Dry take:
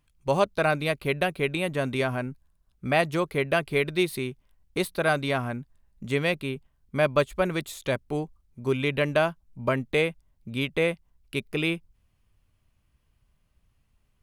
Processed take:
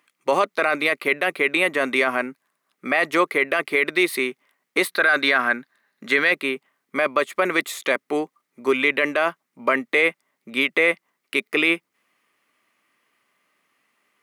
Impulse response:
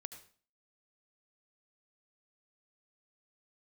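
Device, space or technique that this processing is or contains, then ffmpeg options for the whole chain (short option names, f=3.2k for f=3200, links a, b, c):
laptop speaker: -filter_complex "[0:a]asettb=1/sr,asplit=3[a][b][c];[a]atrim=end=4.924[d];[b]atrim=start=4.92:end=6.31,asetpts=PTS-STARTPTS,afade=t=in:d=0.004:c=qsin,afade=t=out:st=1.386:d=0.004:c=qsin,equalizer=f=1.6k:t=o:w=0.33:g=10,equalizer=f=4k:t=o:w=0.33:g=9,equalizer=f=8k:t=o:w=0.33:g=-4[e];[c]atrim=start=6.306[f];[d][e]acrossfade=d=0.004:c1=hsin:c2=qsin[g];[g][f]acrossfade=d=0.004:c1=qsin:c2=hsin,highpass=f=270:w=0.5412,highpass=f=270:w=1.3066,equalizer=f=1.2k:t=o:w=0.27:g=8,equalizer=f=2k:t=o:w=0.51:g=11,alimiter=limit=-15dB:level=0:latency=1:release=11,volume=7dB"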